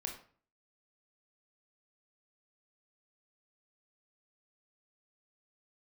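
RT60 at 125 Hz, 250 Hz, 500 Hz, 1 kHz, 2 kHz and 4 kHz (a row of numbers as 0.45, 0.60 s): 0.60, 0.55, 0.45, 0.45, 0.40, 0.35 s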